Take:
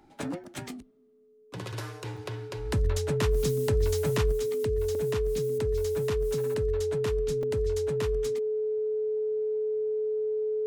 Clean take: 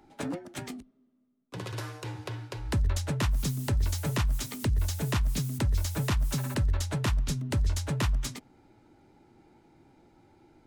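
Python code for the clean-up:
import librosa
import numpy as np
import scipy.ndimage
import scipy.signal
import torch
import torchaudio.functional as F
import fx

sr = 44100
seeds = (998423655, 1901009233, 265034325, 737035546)

y = fx.notch(x, sr, hz=430.0, q=30.0)
y = fx.fix_interpolate(y, sr, at_s=(0.44, 2.17, 4.95, 7.43), length_ms=3.6)
y = fx.fix_level(y, sr, at_s=4.32, step_db=6.0)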